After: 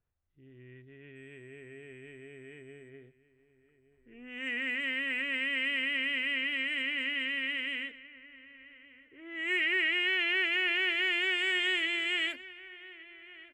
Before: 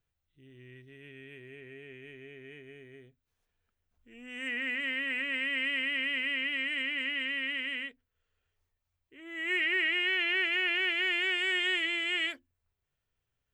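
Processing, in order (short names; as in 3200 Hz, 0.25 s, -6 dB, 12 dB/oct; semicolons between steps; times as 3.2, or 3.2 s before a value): 1.15–2.88 whine 8000 Hz -52 dBFS; on a send: feedback echo 1.169 s, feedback 32%, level -18 dB; on the sum: low-pass opened by the level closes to 1600 Hz, open at -30 dBFS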